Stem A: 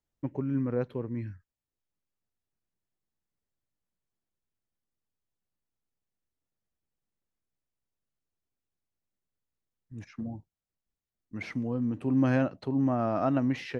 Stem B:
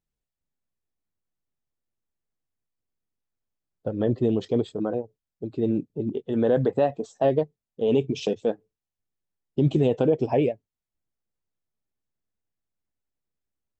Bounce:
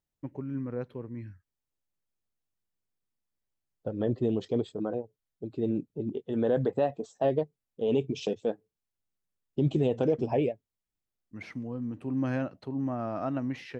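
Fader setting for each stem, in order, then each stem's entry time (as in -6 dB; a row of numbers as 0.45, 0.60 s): -5.0, -5.0 dB; 0.00, 0.00 s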